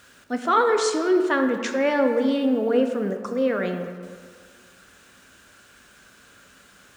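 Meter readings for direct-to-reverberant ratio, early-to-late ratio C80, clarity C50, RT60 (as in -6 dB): 5.0 dB, 8.0 dB, 7.0 dB, 1.9 s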